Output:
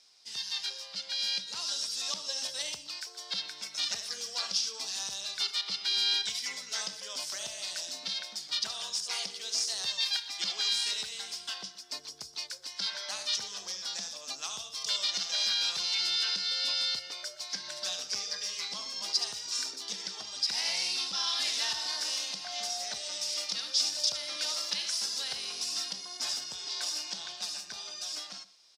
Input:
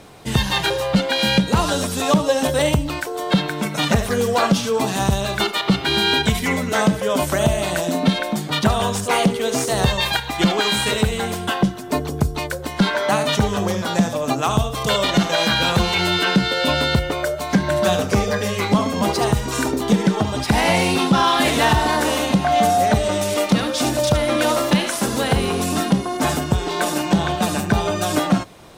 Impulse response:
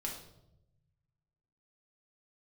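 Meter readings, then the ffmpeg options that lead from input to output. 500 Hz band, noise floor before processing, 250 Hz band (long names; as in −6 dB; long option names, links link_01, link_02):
−30.0 dB, −29 dBFS, −38.0 dB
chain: -filter_complex "[0:a]dynaudnorm=framelen=150:gausssize=21:maxgain=11.5dB,bandpass=frequency=5100:width_type=q:width=5.7:csg=0,asplit=2[link_01][link_02];[link_02]adelay=122.4,volume=-18dB,highshelf=frequency=4000:gain=-2.76[link_03];[link_01][link_03]amix=inputs=2:normalize=0"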